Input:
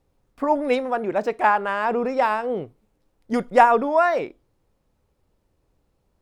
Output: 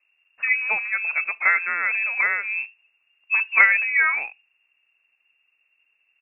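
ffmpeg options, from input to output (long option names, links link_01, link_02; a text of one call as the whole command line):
ffmpeg -i in.wav -af "asetrate=38170,aresample=44100,atempo=1.15535,equalizer=frequency=160:width_type=o:width=0.67:gain=9,equalizer=frequency=400:width_type=o:width=0.67:gain=-5,equalizer=frequency=1600:width_type=o:width=0.67:gain=3,lowpass=frequency=2400:width_type=q:width=0.5098,lowpass=frequency=2400:width_type=q:width=0.6013,lowpass=frequency=2400:width_type=q:width=0.9,lowpass=frequency=2400:width_type=q:width=2.563,afreqshift=-2800,volume=-1dB" out.wav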